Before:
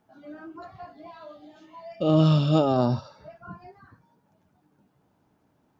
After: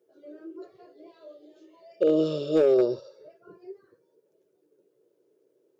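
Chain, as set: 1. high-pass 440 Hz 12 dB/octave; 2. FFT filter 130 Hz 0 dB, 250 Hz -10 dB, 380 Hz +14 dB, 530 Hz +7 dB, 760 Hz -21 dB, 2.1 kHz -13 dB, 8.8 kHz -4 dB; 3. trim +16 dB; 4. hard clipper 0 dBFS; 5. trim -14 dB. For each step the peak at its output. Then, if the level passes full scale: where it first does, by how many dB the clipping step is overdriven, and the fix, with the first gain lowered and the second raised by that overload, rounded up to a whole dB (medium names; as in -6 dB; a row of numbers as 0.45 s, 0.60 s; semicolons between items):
-13.5 dBFS, -13.0 dBFS, +3.0 dBFS, 0.0 dBFS, -14.0 dBFS; step 3, 3.0 dB; step 3 +13 dB, step 5 -11 dB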